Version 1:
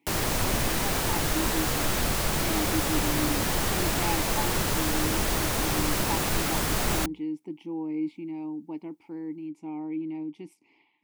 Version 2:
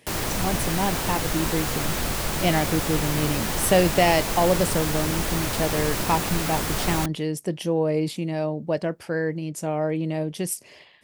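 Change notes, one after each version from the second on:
speech: remove vowel filter u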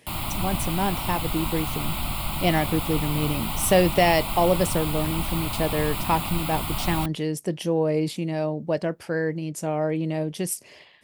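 background: add fixed phaser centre 1700 Hz, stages 6

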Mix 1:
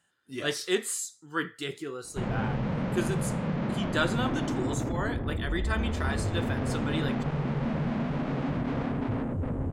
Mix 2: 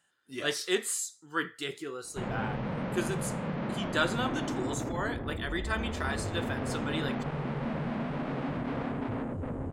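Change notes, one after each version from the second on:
background: add air absorption 94 m; master: add low shelf 230 Hz -7.5 dB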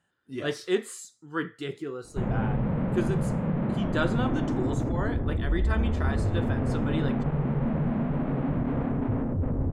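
background: add LPF 3200 Hz 12 dB/oct; master: add tilt -3 dB/oct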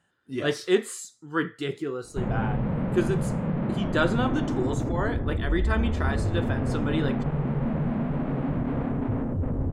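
speech +4.0 dB; background: remove air absorption 94 m

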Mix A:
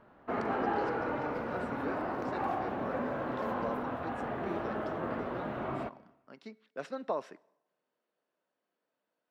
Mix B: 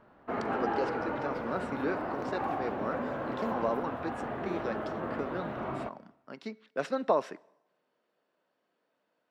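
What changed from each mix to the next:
speech +7.5 dB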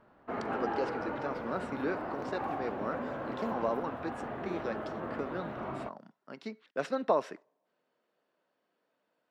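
reverb: off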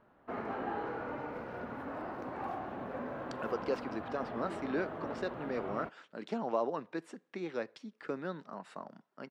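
speech: entry +2.90 s; background -3.0 dB

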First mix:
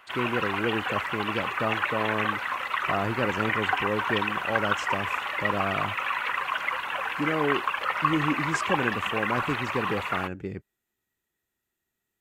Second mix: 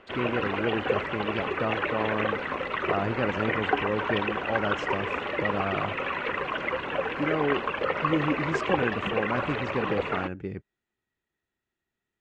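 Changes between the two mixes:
background: add resonant low shelf 650 Hz +13 dB, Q 1.5; master: add air absorption 130 m

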